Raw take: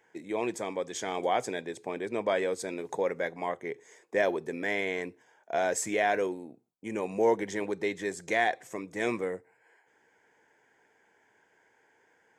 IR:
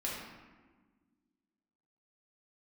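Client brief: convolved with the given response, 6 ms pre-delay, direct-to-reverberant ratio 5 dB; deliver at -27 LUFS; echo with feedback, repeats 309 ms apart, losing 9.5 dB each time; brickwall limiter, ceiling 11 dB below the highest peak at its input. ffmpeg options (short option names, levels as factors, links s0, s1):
-filter_complex "[0:a]alimiter=limit=0.0708:level=0:latency=1,aecho=1:1:309|618|927|1236:0.335|0.111|0.0365|0.012,asplit=2[s0][s1];[1:a]atrim=start_sample=2205,adelay=6[s2];[s1][s2]afir=irnorm=-1:irlink=0,volume=0.376[s3];[s0][s3]amix=inputs=2:normalize=0,volume=2.11"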